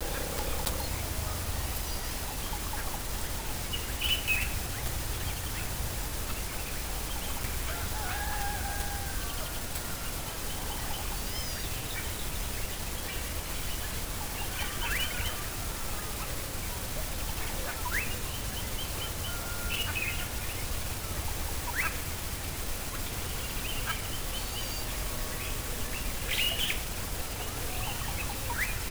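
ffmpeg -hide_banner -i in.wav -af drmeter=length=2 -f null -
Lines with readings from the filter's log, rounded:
Channel 1: DR: 12.4
Overall DR: 12.4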